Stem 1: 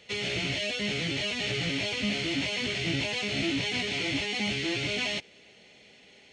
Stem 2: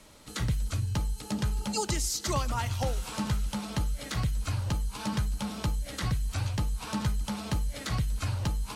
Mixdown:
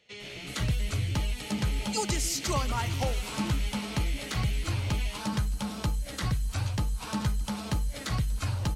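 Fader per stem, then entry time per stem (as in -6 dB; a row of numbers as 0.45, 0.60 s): -11.0, +0.5 dB; 0.00, 0.20 s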